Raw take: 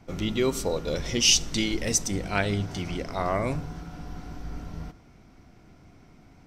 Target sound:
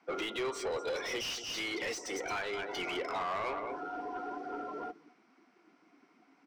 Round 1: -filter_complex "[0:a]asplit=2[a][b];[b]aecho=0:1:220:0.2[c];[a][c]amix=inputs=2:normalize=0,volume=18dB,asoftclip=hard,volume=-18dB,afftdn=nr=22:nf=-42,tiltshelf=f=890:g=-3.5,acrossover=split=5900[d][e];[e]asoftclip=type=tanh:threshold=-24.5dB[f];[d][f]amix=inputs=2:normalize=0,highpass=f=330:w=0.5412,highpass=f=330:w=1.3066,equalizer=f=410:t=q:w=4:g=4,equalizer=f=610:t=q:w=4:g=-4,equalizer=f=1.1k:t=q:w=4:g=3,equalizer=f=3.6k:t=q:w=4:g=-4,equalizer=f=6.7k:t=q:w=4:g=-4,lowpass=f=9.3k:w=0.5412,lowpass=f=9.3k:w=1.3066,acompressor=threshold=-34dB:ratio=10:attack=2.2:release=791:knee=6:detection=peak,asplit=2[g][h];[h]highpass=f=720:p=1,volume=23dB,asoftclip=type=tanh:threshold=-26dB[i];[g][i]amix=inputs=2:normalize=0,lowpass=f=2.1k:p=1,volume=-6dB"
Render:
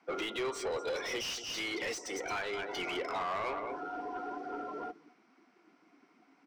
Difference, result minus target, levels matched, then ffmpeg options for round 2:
soft clip: distortion -8 dB
-filter_complex "[0:a]asplit=2[a][b];[b]aecho=0:1:220:0.2[c];[a][c]amix=inputs=2:normalize=0,volume=18dB,asoftclip=hard,volume=-18dB,afftdn=nr=22:nf=-42,tiltshelf=f=890:g=-3.5,acrossover=split=5900[d][e];[e]asoftclip=type=tanh:threshold=-34.5dB[f];[d][f]amix=inputs=2:normalize=0,highpass=f=330:w=0.5412,highpass=f=330:w=1.3066,equalizer=f=410:t=q:w=4:g=4,equalizer=f=610:t=q:w=4:g=-4,equalizer=f=1.1k:t=q:w=4:g=3,equalizer=f=3.6k:t=q:w=4:g=-4,equalizer=f=6.7k:t=q:w=4:g=-4,lowpass=f=9.3k:w=0.5412,lowpass=f=9.3k:w=1.3066,acompressor=threshold=-34dB:ratio=10:attack=2.2:release=791:knee=6:detection=peak,asplit=2[g][h];[h]highpass=f=720:p=1,volume=23dB,asoftclip=type=tanh:threshold=-26dB[i];[g][i]amix=inputs=2:normalize=0,lowpass=f=2.1k:p=1,volume=-6dB"

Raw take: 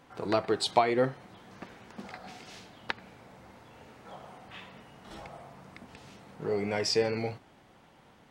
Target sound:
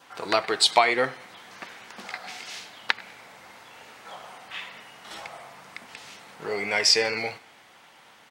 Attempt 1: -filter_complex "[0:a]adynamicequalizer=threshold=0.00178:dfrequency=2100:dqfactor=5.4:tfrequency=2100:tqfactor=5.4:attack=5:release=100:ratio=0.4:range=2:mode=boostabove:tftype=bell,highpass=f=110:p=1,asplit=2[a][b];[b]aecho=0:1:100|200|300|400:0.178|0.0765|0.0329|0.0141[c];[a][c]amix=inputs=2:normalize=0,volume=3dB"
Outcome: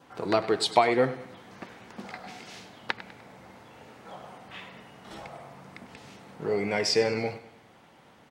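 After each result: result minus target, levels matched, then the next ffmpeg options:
echo-to-direct +9 dB; 500 Hz band +4.5 dB
-filter_complex "[0:a]adynamicequalizer=threshold=0.00178:dfrequency=2100:dqfactor=5.4:tfrequency=2100:tqfactor=5.4:attack=5:release=100:ratio=0.4:range=2:mode=boostabove:tftype=bell,highpass=f=110:p=1,asplit=2[a][b];[b]aecho=0:1:100|200|300:0.0631|0.0271|0.0117[c];[a][c]amix=inputs=2:normalize=0,volume=3dB"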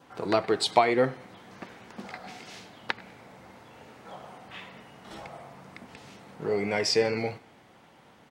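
500 Hz band +4.5 dB
-filter_complex "[0:a]adynamicequalizer=threshold=0.00178:dfrequency=2100:dqfactor=5.4:tfrequency=2100:tqfactor=5.4:attack=5:release=100:ratio=0.4:range=2:mode=boostabove:tftype=bell,highpass=f=110:p=1,tiltshelf=f=630:g=-9,asplit=2[a][b];[b]aecho=0:1:100|200|300:0.0631|0.0271|0.0117[c];[a][c]amix=inputs=2:normalize=0,volume=3dB"

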